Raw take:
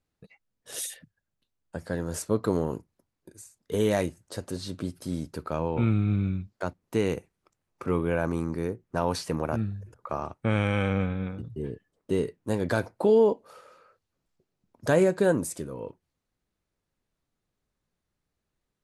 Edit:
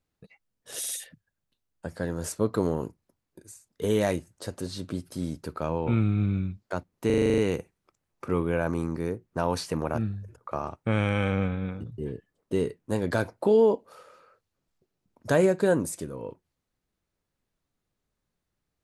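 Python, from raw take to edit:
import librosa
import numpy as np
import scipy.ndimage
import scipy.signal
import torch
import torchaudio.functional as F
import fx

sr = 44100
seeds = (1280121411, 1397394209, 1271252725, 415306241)

y = fx.edit(x, sr, fx.stutter(start_s=0.79, slice_s=0.05, count=3),
    fx.stutter(start_s=6.96, slice_s=0.04, count=9), tone=tone)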